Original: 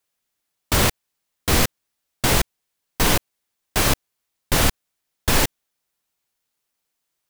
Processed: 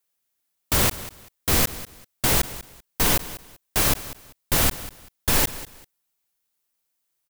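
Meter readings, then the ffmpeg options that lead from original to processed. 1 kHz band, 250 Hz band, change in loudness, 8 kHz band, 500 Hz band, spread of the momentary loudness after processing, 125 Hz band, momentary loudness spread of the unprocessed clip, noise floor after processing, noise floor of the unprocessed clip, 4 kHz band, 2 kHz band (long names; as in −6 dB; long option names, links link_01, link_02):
−4.0 dB, −4.0 dB, −0.5 dB, −0.5 dB, −4.0 dB, 18 LU, −4.0 dB, 7 LU, −77 dBFS, −79 dBFS, −3.0 dB, −3.5 dB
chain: -af "highshelf=frequency=9100:gain=8.5,aecho=1:1:194|388:0.158|0.038,volume=-4dB"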